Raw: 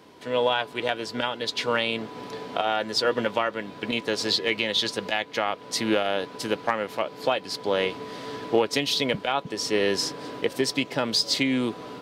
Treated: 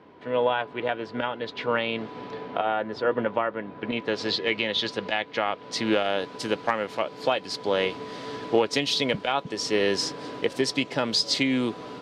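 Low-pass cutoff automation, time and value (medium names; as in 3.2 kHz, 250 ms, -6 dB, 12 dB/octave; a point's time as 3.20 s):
1.74 s 2.2 kHz
2.09 s 4.1 kHz
2.81 s 1.7 kHz
3.74 s 1.7 kHz
4.25 s 3.9 kHz
5.54 s 3.9 kHz
6.09 s 8.1 kHz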